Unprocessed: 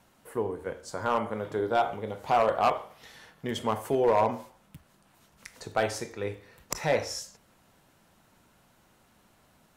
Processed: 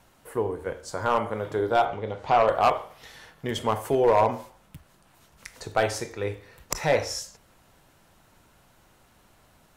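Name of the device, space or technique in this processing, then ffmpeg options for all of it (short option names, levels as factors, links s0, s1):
low shelf boost with a cut just above: -filter_complex "[0:a]lowshelf=f=62:g=7.5,equalizer=f=210:t=o:w=0.64:g=-4.5,asettb=1/sr,asplit=3[s0][s1][s2];[s0]atrim=end=1.854[s3];[s1]atrim=start=1.85:end=2.48,asetpts=PTS-STARTPTS,afade=t=in:d=0.004:c=qsin,afade=t=out:st=0.626:d=0.004:c=qsin,lowpass=5200[s4];[s2]atrim=start=2.476[s5];[s3][s4]acrossfade=d=0.004:c1=hsin:c2=qsin[s6];[s6][s5]acrossfade=d=0.004:c1=qsin:c2=hsin,volume=1.5"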